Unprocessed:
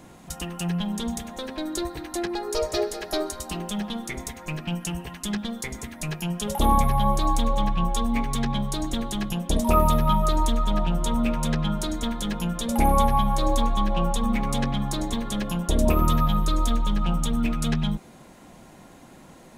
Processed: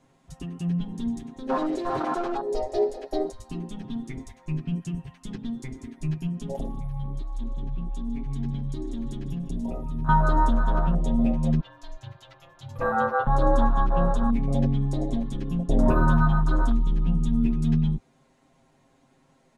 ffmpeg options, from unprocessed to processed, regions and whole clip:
ffmpeg -i in.wav -filter_complex "[0:a]asettb=1/sr,asplit=3[link_01][link_02][link_03];[link_01]atrim=end=1.494[link_04];[link_02]atrim=start=1.49:end=2.37,asetpts=PTS-STARTPTS,afade=type=in:duration=0.004:curve=qsin,afade=type=out:start_time=0.876:duration=0.004:curve=qsin,acompressor=threshold=-31dB:ratio=2.5:attack=3.2:release=140:knee=1:detection=peak,asplit=2[link_05][link_06];[link_06]highpass=frequency=720:poles=1,volume=34dB,asoftclip=type=tanh:threshold=-19.5dB[link_07];[link_05][link_07]amix=inputs=2:normalize=0,lowpass=frequency=3500:poles=1,volume=-6dB[link_08];[link_03]atrim=start=2.366[link_09];[link_04][link_08]acrossfade=duration=0.004:curve1=hsin:curve2=qsin[link_10];[link_10][link_09]acrossfade=duration=0.004:curve1=qsin:curve2=hsin,asettb=1/sr,asplit=3[link_11][link_12][link_13];[link_11]atrim=end=6.284[link_14];[link_12]atrim=start=6.28:end=10.09,asetpts=PTS-STARTPTS,afade=type=in:duration=0.004:curve=qsin,afade=type=out:start_time=3.806:duration=0.004:curve=qsin,acompressor=threshold=-26dB:ratio=16:attack=3.2:release=140:knee=1:detection=peak,asplit=2[link_15][link_16];[link_16]adelay=153,lowpass=frequency=3600:poles=1,volume=-9dB,asplit=2[link_17][link_18];[link_18]adelay=153,lowpass=frequency=3600:poles=1,volume=0.36,asplit=2[link_19][link_20];[link_20]adelay=153,lowpass=frequency=3600:poles=1,volume=0.36,asplit=2[link_21][link_22];[link_22]adelay=153,lowpass=frequency=3600:poles=1,volume=0.36[link_23];[link_15][link_17][link_19][link_21][link_23]amix=inputs=5:normalize=0,atrim=end_sample=168021[link_24];[link_13]atrim=start=10.086[link_25];[link_14][link_24]acrossfade=duration=0.004:curve1=hsin:curve2=qsin[link_26];[link_26][link_25]acrossfade=duration=0.004:curve1=qsin:curve2=hsin,asettb=1/sr,asplit=3[link_27][link_28][link_29];[link_27]atrim=end=11.604[link_30];[link_28]atrim=start=11.6:end=13.27,asetpts=PTS-STARTPTS,afade=type=in:duration=0.004:curve=qsin,afade=type=out:start_time=1.666:duration=0.004:curve=qsin,highpass=frequency=300:width=0.5412,highpass=frequency=300:width=1.3066,equalizer=frequency=9000:width=2.6:gain=-14,aeval=exprs='val(0)*sin(2*PI*330*n/s)':channel_layout=same[link_31];[link_29]atrim=start=13.266[link_32];[link_30][link_31]acrossfade=duration=0.004:curve1=hsin:curve2=qsin[link_33];[link_33][link_32]acrossfade=duration=0.004:curve1=qsin:curve2=hsin,lowpass=8300,afwtdn=0.0631,aecho=1:1:7.5:0.87" out.wav

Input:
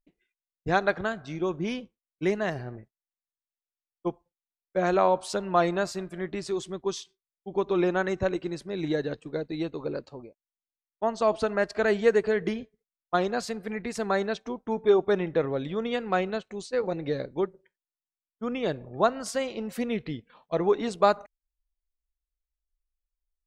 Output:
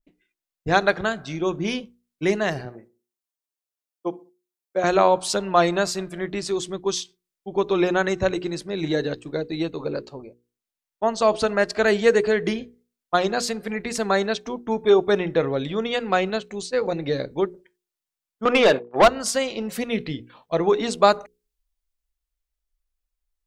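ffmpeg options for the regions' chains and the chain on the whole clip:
ffmpeg -i in.wav -filter_complex "[0:a]asettb=1/sr,asplit=3[link_01][link_02][link_03];[link_01]atrim=end=2.654[link_04];[link_02]atrim=start=2.65:end=4.84,asetpts=PTS-STARTPTS,afade=type=in:duration=0.004:curve=qsin,afade=type=out:start_time=2.186:duration=0.004:curve=qsin,highpass=260,equalizer=frequency=2100:width_type=o:width=2.5:gain=-4.5,asplit=2[link_05][link_06];[link_06]adelay=64,lowpass=frequency=1500:poles=1,volume=-20dB,asplit=2[link_07][link_08];[link_08]adelay=64,lowpass=frequency=1500:poles=1,volume=0.36,asplit=2[link_09][link_10];[link_10]adelay=64,lowpass=frequency=1500:poles=1,volume=0.36[link_11];[link_05][link_07][link_09][link_11]amix=inputs=4:normalize=0,atrim=end_sample=96579[link_12];[link_03]atrim=start=4.836[link_13];[link_04][link_12]acrossfade=duration=0.004:curve1=hsin:curve2=qsin[link_14];[link_14][link_13]acrossfade=duration=0.004:curve1=qsin:curve2=hsin,asettb=1/sr,asplit=3[link_15][link_16][link_17];[link_15]atrim=end=18.454[link_18];[link_16]atrim=start=18.45:end=19.08,asetpts=PTS-STARTPTS,afade=type=in:duration=0.004:curve=qsin,afade=type=out:start_time=0.626:duration=0.004:curve=qsin,agate=range=-33dB:threshold=-40dB:ratio=16:release=100:detection=peak,highpass=frequency=320:poles=1,asplit=2[link_19][link_20];[link_20]highpass=frequency=720:poles=1,volume=26dB,asoftclip=type=tanh:threshold=-9dB[link_21];[link_19][link_21]amix=inputs=2:normalize=0,lowpass=frequency=1400:poles=1,volume=-6dB[link_22];[link_17]atrim=start=19.076[link_23];[link_18][link_22]acrossfade=duration=0.004:curve1=hsin:curve2=qsin[link_24];[link_24][link_23]acrossfade=duration=0.004:curve1=qsin:curve2=hsin,bandreject=frequency=60:width_type=h:width=6,bandreject=frequency=120:width_type=h:width=6,bandreject=frequency=180:width_type=h:width=6,bandreject=frequency=240:width_type=h:width=6,bandreject=frequency=300:width_type=h:width=6,bandreject=frequency=360:width_type=h:width=6,bandreject=frequency=420:width_type=h:width=6,bandreject=frequency=480:width_type=h:width=6,adynamicequalizer=threshold=0.00708:dfrequency=2500:dqfactor=0.7:tfrequency=2500:tqfactor=0.7:attack=5:release=100:ratio=0.375:range=3:mode=boostabove:tftype=highshelf,volume=5dB" out.wav

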